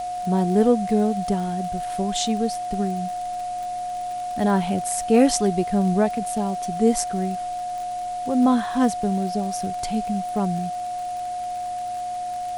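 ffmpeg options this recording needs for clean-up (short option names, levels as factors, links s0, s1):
-af "adeclick=t=4,bandreject=f=112.1:t=h:w=4,bandreject=f=224.2:t=h:w=4,bandreject=f=336.3:t=h:w=4,bandreject=f=720:w=30,afwtdn=0.0056"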